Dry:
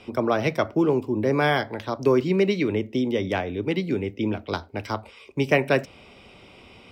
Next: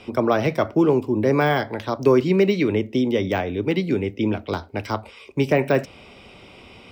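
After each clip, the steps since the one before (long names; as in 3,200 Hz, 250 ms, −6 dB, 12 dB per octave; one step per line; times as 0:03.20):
de-essing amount 90%
level +3.5 dB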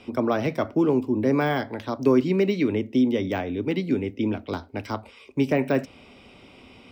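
parametric band 260 Hz +7.5 dB 0.35 octaves
level −5 dB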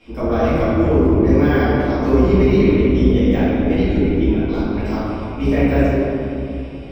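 sub-octave generator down 2 octaves, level −1 dB
convolution reverb RT60 2.8 s, pre-delay 4 ms, DRR −15 dB
level −9 dB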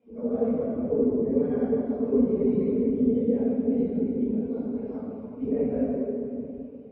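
random phases in long frames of 50 ms
pair of resonant band-passes 330 Hz, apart 0.87 octaves
level −3 dB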